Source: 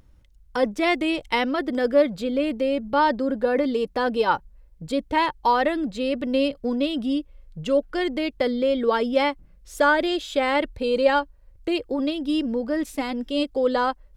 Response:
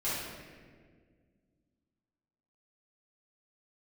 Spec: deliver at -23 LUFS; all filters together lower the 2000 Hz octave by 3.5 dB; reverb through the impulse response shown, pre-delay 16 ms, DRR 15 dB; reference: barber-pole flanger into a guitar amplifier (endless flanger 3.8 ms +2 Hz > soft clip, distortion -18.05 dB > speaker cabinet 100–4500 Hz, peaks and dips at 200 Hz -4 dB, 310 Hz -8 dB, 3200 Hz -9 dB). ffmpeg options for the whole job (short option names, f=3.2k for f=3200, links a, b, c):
-filter_complex "[0:a]equalizer=f=2k:t=o:g=-4,asplit=2[a][b];[1:a]atrim=start_sample=2205,adelay=16[c];[b][c]afir=irnorm=-1:irlink=0,volume=-22dB[d];[a][d]amix=inputs=2:normalize=0,asplit=2[e][f];[f]adelay=3.8,afreqshift=2[g];[e][g]amix=inputs=2:normalize=1,asoftclip=threshold=-16dB,highpass=100,equalizer=f=200:t=q:w=4:g=-4,equalizer=f=310:t=q:w=4:g=-8,equalizer=f=3.2k:t=q:w=4:g=-9,lowpass=f=4.5k:w=0.5412,lowpass=f=4.5k:w=1.3066,volume=6.5dB"